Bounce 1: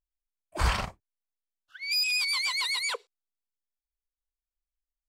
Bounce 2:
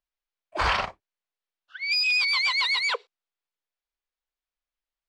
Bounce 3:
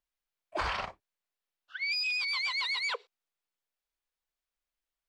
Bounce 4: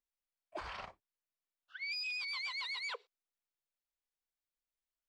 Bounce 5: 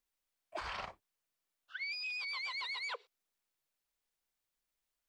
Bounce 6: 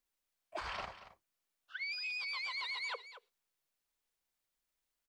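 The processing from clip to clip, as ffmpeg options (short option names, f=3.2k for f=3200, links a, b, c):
-filter_complex "[0:a]acrossover=split=360 5200:gain=0.224 1 0.0631[a][b][c];[a][b][c]amix=inputs=3:normalize=0,volume=6.5dB"
-af "acompressor=threshold=-30dB:ratio=6"
-af "alimiter=level_in=0.5dB:limit=-24dB:level=0:latency=1:release=365,volume=-0.5dB,volume=-8dB"
-filter_complex "[0:a]acrossover=split=930|4000[a][b][c];[a]acompressor=threshold=-51dB:ratio=4[d];[b]acompressor=threshold=-47dB:ratio=4[e];[c]acompressor=threshold=-57dB:ratio=4[f];[d][e][f]amix=inputs=3:normalize=0,volume=6dB"
-af "aecho=1:1:229:0.211"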